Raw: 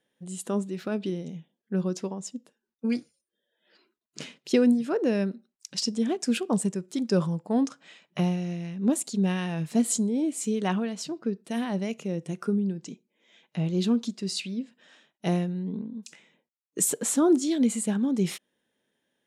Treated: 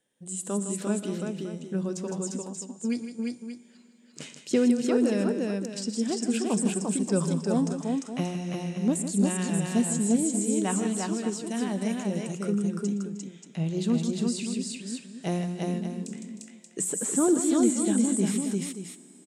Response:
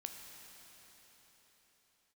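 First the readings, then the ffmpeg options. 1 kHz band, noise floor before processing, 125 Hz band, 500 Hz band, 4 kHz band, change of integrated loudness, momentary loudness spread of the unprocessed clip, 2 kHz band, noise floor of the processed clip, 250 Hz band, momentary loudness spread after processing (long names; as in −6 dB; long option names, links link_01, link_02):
0.0 dB, below −85 dBFS, 0.0 dB, 0.0 dB, −2.5 dB, 0.0 dB, 15 LU, −0.5 dB, −54 dBFS, +0.5 dB, 13 LU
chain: -filter_complex "[0:a]lowshelf=frequency=140:gain=4.5,bandreject=frequency=60:width_type=h:width=6,bandreject=frequency=120:width_type=h:width=6,bandreject=frequency=180:width_type=h:width=6,aecho=1:1:115|158|308|348|580:0.106|0.299|0.119|0.708|0.282,asplit=2[link_01][link_02];[1:a]atrim=start_sample=2205[link_03];[link_02][link_03]afir=irnorm=-1:irlink=0,volume=-11dB[link_04];[link_01][link_04]amix=inputs=2:normalize=0,acrossover=split=2600[link_05][link_06];[link_06]acompressor=threshold=-36dB:ratio=4:attack=1:release=60[link_07];[link_05][link_07]amix=inputs=2:normalize=0,equalizer=frequency=8100:width=1.8:gain=14,volume=-4dB"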